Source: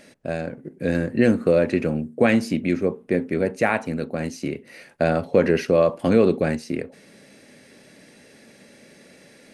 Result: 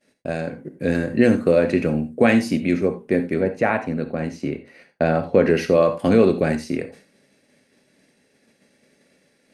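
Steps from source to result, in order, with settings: 3.39–5.47 s: low-pass 1.8 kHz -> 3 kHz 6 dB/octave; expander -40 dBFS; gated-style reverb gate 110 ms flat, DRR 9 dB; trim +1.5 dB

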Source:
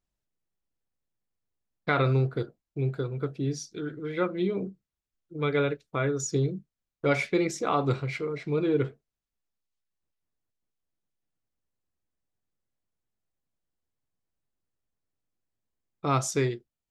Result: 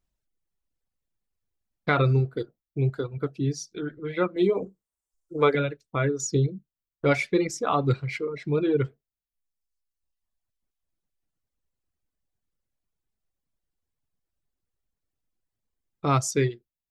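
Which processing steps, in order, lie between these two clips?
4.36–5.55 s: graphic EQ 125/500/1000/8000 Hz -7/+7/+9/+11 dB; reverb removal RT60 1.4 s; bass shelf 120 Hz +5 dB; trim +2.5 dB

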